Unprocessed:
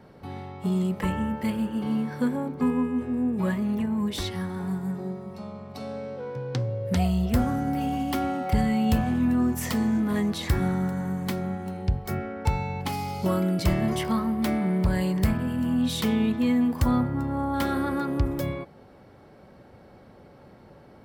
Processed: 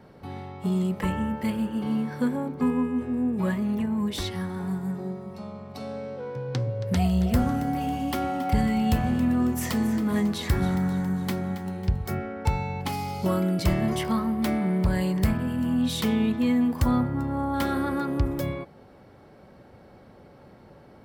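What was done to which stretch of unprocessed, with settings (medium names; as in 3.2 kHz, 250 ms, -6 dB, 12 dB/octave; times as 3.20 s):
6.26–12.07 s: two-band feedback delay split 420 Hz, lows 119 ms, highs 274 ms, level -13 dB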